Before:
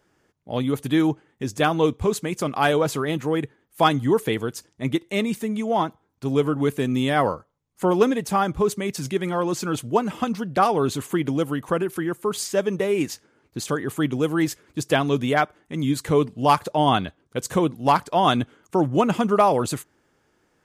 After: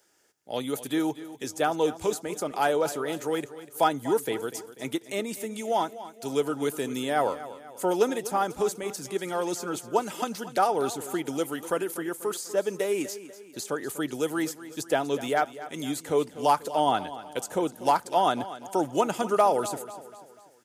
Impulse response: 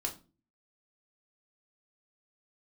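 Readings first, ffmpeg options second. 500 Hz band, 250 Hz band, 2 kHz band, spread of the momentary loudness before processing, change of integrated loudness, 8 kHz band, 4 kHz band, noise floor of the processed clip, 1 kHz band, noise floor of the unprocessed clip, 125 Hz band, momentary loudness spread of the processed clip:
-4.0 dB, -8.5 dB, -6.0 dB, 8 LU, -5.5 dB, -1.5 dB, -6.0 dB, -52 dBFS, -4.0 dB, -67 dBFS, -15.0 dB, 10 LU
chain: -filter_complex "[0:a]bass=f=250:g=-15,treble=f=4000:g=13,acrossover=split=100|1500[s0][s1][s2];[s2]acompressor=threshold=0.0178:ratio=5[s3];[s0][s1][s3]amix=inputs=3:normalize=0,asuperstop=centerf=1100:order=4:qfactor=7.8,aecho=1:1:245|490|735|980:0.178|0.0836|0.0393|0.0185,volume=0.75"

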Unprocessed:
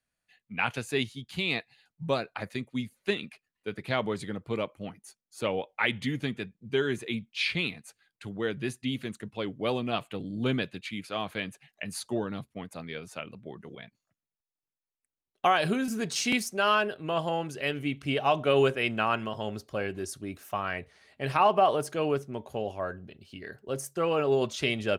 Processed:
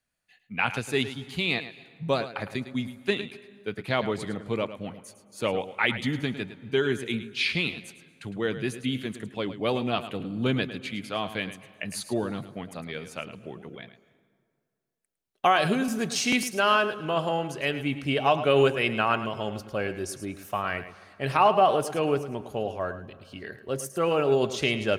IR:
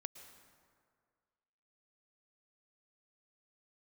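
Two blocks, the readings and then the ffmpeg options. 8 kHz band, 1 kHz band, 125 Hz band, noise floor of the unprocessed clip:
+3.0 dB, +3.0 dB, +3.0 dB, under -85 dBFS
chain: -filter_complex "[0:a]asplit=2[s0][s1];[1:a]atrim=start_sample=2205,adelay=107[s2];[s1][s2]afir=irnorm=-1:irlink=0,volume=0.398[s3];[s0][s3]amix=inputs=2:normalize=0,volume=1.33"

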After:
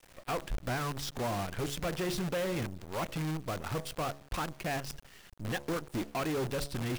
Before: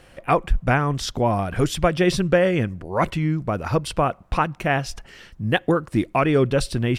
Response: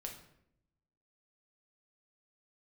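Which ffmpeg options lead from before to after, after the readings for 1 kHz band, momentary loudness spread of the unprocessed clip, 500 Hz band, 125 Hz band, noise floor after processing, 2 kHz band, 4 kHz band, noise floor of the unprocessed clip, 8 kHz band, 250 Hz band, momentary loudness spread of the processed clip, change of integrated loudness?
-14.0 dB, 6 LU, -14.5 dB, -14.0 dB, -57 dBFS, -13.0 dB, -9.5 dB, -51 dBFS, -7.0 dB, -14.0 dB, 5 LU, -13.5 dB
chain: -af "bandreject=f=70.85:t=h:w=4,bandreject=f=141.7:t=h:w=4,bandreject=f=212.55:t=h:w=4,bandreject=f=283.4:t=h:w=4,bandreject=f=354.25:t=h:w=4,bandreject=f=425.1:t=h:w=4,bandreject=f=495.95:t=h:w=4,bandreject=f=566.8:t=h:w=4,bandreject=f=637.65:t=h:w=4,acrusher=bits=5:dc=4:mix=0:aa=0.000001,asoftclip=type=tanh:threshold=0.0794,volume=0.422"

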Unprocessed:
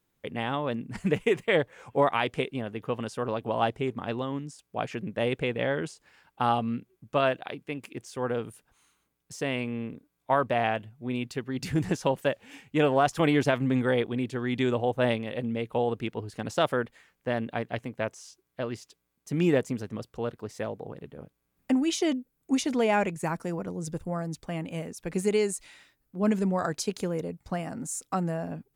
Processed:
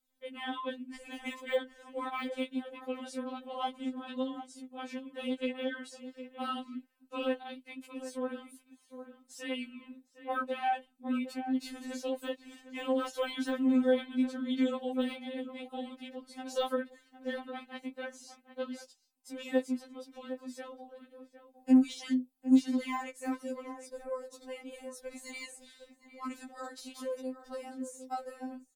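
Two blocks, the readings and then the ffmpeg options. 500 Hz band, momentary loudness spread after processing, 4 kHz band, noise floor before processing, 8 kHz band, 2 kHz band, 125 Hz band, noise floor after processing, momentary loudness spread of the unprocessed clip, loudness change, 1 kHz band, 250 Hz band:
-9.0 dB, 15 LU, -6.0 dB, -78 dBFS, -10.5 dB, -9.0 dB, under -30 dB, -70 dBFS, 12 LU, -6.0 dB, -8.5 dB, -3.0 dB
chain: -filter_complex "[0:a]deesser=0.85,highshelf=f=11000:g=-11,flanger=delay=1.2:depth=9.6:regen=-60:speed=0.88:shape=sinusoidal,acrossover=split=250[s0][s1];[s1]aexciter=amount=1.5:drive=7.8:freq=3400[s2];[s0][s2]amix=inputs=2:normalize=0,asplit=2[s3][s4];[s4]adelay=758,volume=0.282,highshelf=f=4000:g=-17.1[s5];[s3][s5]amix=inputs=2:normalize=0,afftfilt=real='re*3.46*eq(mod(b,12),0)':imag='im*3.46*eq(mod(b,12),0)':win_size=2048:overlap=0.75,volume=0.841"

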